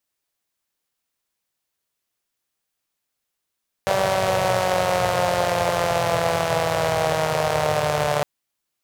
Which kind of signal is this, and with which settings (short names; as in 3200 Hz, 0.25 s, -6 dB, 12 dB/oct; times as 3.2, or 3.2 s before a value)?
four-cylinder engine model, changing speed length 4.36 s, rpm 5800, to 4400, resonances 120/590 Hz